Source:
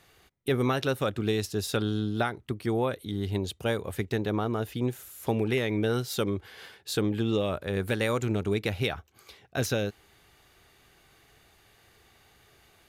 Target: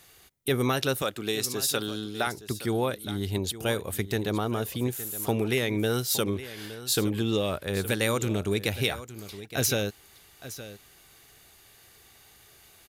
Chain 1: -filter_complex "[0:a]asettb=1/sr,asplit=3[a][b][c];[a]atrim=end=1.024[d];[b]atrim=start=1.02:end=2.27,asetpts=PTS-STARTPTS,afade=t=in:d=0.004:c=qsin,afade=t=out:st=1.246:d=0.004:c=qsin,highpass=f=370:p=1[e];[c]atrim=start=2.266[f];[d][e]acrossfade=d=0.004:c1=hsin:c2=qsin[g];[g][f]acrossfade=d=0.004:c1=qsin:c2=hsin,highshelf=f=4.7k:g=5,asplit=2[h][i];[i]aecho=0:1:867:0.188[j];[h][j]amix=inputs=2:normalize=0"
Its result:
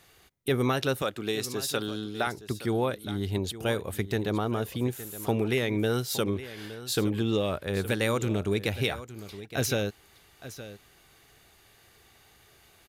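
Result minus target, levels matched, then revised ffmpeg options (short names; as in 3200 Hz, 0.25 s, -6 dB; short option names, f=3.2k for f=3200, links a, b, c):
8000 Hz band -5.0 dB
-filter_complex "[0:a]asettb=1/sr,asplit=3[a][b][c];[a]atrim=end=1.024[d];[b]atrim=start=1.02:end=2.27,asetpts=PTS-STARTPTS,afade=t=in:d=0.004:c=qsin,afade=t=out:st=1.246:d=0.004:c=qsin,highpass=f=370:p=1[e];[c]atrim=start=2.266[f];[d][e]acrossfade=d=0.004:c1=hsin:c2=qsin[g];[g][f]acrossfade=d=0.004:c1=qsin:c2=hsin,highshelf=f=4.7k:g=13,asplit=2[h][i];[i]aecho=0:1:867:0.188[j];[h][j]amix=inputs=2:normalize=0"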